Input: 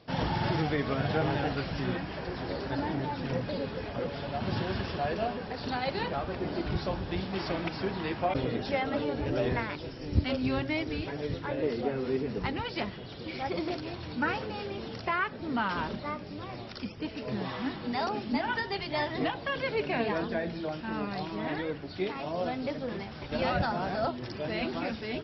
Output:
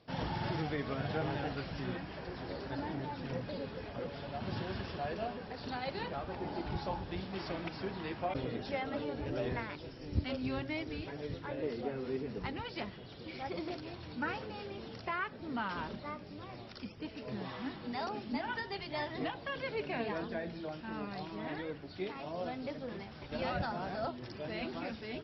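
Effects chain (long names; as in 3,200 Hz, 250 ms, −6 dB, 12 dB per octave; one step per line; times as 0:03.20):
0:06.29–0:07.04: parametric band 850 Hz +13.5 dB 0.2 octaves
level −7 dB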